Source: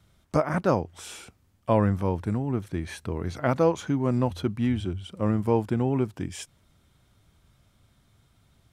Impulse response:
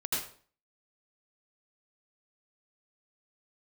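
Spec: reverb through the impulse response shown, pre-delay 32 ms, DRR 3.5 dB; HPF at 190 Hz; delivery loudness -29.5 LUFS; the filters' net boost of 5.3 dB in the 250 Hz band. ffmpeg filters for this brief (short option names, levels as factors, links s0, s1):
-filter_complex "[0:a]highpass=190,equalizer=f=250:t=o:g=8,asplit=2[s0][s1];[1:a]atrim=start_sample=2205,adelay=32[s2];[s1][s2]afir=irnorm=-1:irlink=0,volume=0.335[s3];[s0][s3]amix=inputs=2:normalize=0,volume=0.447"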